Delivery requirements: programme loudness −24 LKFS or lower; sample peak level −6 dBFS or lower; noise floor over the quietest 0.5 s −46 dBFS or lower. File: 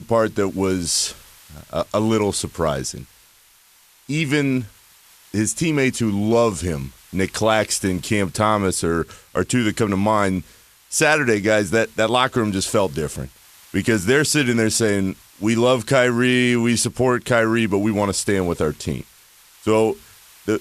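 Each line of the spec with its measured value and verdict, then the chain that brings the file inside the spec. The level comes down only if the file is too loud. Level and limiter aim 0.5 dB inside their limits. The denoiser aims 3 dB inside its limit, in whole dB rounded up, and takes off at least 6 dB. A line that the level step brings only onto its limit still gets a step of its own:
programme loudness −20.0 LKFS: out of spec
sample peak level −3.5 dBFS: out of spec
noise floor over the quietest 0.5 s −53 dBFS: in spec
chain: level −4.5 dB

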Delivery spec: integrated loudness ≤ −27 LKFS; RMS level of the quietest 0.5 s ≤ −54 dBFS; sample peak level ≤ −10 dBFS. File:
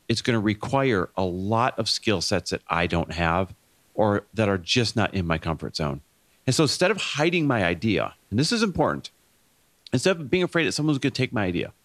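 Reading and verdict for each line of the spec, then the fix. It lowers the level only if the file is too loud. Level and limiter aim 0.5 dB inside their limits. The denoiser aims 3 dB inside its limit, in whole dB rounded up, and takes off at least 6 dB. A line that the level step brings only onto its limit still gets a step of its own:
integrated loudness −24.0 LKFS: out of spec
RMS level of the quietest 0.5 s −63 dBFS: in spec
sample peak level −5.0 dBFS: out of spec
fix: level −3.5 dB
brickwall limiter −10.5 dBFS

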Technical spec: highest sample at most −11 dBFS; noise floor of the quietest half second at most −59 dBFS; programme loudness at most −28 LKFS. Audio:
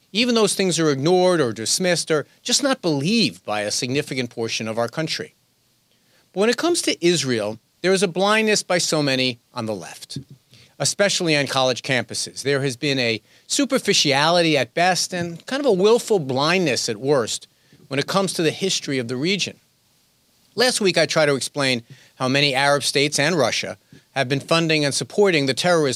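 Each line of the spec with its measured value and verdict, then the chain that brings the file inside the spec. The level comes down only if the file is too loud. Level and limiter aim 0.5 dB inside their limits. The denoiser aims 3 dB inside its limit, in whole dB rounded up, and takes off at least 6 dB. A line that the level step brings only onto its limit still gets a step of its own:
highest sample −2.5 dBFS: out of spec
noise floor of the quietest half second −63 dBFS: in spec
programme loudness −20.0 LKFS: out of spec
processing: level −8.5 dB
brickwall limiter −11.5 dBFS

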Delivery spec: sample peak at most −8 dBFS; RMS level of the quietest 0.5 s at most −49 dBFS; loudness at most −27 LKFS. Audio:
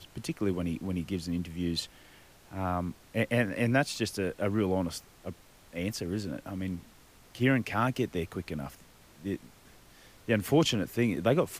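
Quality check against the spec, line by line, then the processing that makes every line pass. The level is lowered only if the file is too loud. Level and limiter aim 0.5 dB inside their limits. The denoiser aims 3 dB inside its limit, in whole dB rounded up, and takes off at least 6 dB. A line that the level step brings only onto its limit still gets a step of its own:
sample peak −12.5 dBFS: in spec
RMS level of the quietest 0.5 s −57 dBFS: in spec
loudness −31.0 LKFS: in spec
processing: no processing needed

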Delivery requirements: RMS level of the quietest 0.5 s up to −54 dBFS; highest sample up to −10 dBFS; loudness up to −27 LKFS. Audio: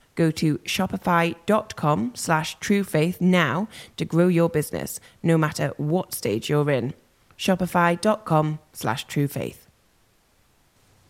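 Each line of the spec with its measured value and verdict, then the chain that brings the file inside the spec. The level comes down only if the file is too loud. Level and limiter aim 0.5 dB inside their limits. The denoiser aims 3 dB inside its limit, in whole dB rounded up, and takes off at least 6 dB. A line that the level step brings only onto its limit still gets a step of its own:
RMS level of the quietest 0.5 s −62 dBFS: in spec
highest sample −6.0 dBFS: out of spec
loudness −23.5 LKFS: out of spec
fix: level −4 dB
brickwall limiter −10.5 dBFS

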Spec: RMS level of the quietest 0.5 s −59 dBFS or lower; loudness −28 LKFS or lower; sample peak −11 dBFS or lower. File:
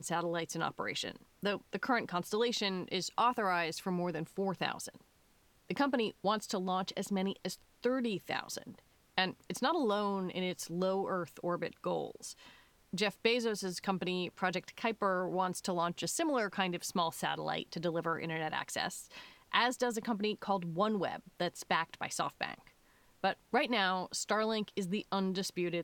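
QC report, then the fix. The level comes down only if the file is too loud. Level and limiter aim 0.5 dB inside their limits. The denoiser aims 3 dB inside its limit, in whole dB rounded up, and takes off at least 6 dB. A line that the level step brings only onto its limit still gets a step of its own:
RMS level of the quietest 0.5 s −68 dBFS: in spec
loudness −35.0 LKFS: in spec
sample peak −14.5 dBFS: in spec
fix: no processing needed

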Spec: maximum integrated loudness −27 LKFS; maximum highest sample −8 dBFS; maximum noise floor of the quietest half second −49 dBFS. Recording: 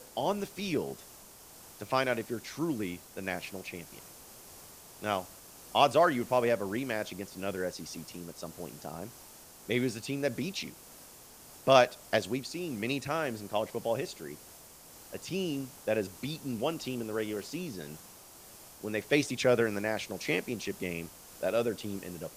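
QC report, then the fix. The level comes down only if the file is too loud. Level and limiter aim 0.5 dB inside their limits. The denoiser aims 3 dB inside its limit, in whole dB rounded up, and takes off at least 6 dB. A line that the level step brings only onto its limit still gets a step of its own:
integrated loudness −32.5 LKFS: in spec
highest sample −7.0 dBFS: out of spec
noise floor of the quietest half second −53 dBFS: in spec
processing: brickwall limiter −8.5 dBFS

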